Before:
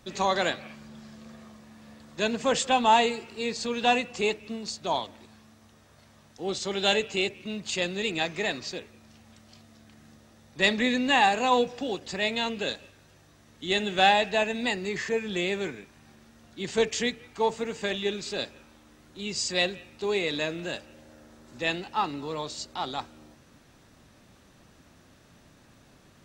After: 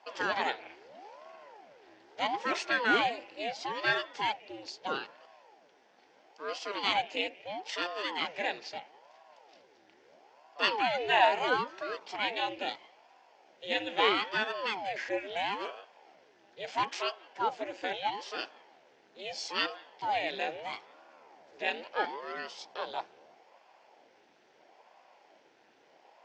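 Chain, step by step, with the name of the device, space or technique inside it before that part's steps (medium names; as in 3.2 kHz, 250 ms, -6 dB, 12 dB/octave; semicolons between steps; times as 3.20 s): voice changer toy (ring modulator with a swept carrier 490 Hz, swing 80%, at 0.76 Hz; cabinet simulation 430–5000 Hz, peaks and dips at 800 Hz +5 dB, 1.2 kHz -8 dB, 3.9 kHz -7 dB)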